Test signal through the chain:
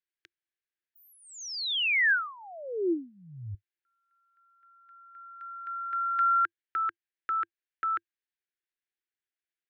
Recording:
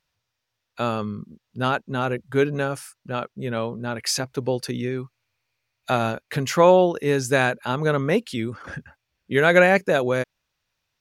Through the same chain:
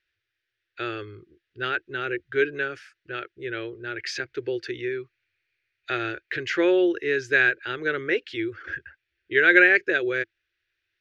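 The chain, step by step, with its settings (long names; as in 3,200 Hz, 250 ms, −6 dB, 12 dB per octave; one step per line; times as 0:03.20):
drawn EQ curve 100 Hz 0 dB, 220 Hz −23 dB, 340 Hz +11 dB, 580 Hz −6 dB, 1,000 Hz −14 dB, 1,600 Hz +13 dB, 3,500 Hz +5 dB, 6,300 Hz −6 dB, 9,900 Hz −24 dB
level −7 dB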